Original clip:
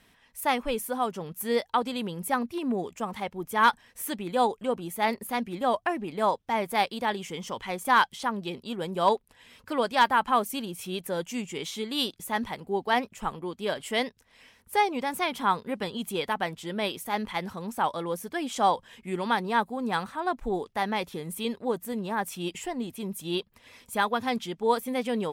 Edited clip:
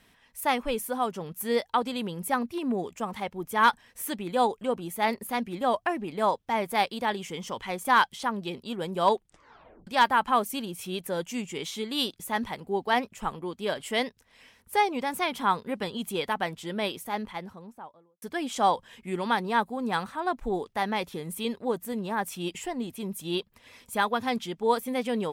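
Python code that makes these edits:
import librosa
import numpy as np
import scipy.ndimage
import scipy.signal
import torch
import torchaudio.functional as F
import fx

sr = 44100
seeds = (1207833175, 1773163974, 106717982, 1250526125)

y = fx.studio_fade_out(x, sr, start_s=16.75, length_s=1.47)
y = fx.edit(y, sr, fx.tape_stop(start_s=9.12, length_s=0.75), tone=tone)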